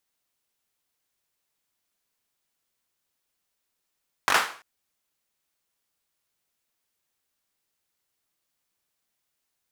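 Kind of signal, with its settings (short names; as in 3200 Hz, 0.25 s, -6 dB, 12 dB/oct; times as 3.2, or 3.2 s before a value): hand clap length 0.34 s, apart 21 ms, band 1200 Hz, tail 0.42 s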